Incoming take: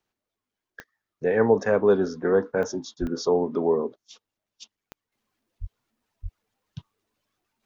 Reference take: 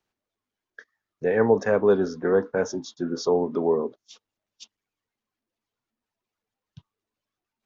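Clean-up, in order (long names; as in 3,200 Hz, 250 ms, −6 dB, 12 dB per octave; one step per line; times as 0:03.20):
click removal
0:03.00–0:03.12: high-pass filter 140 Hz 24 dB per octave
0:05.12: level correction −8.5 dB
0:05.60–0:05.72: high-pass filter 140 Hz 24 dB per octave
0:06.22–0:06.34: high-pass filter 140 Hz 24 dB per octave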